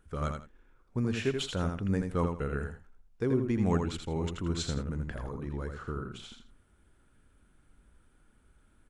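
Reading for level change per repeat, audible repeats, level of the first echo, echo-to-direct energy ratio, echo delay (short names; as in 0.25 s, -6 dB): -13.0 dB, 2, -5.5 dB, -5.5 dB, 82 ms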